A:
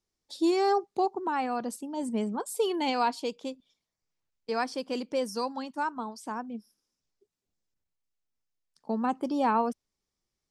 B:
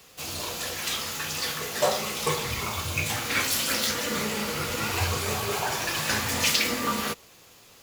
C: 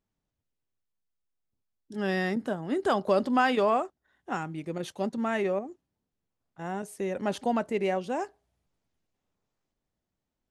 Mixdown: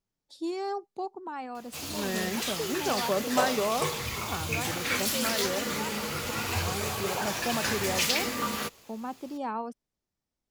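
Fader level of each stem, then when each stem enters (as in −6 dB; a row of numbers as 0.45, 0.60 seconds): −8.0, −3.5, −4.5 decibels; 0.00, 1.55, 0.00 seconds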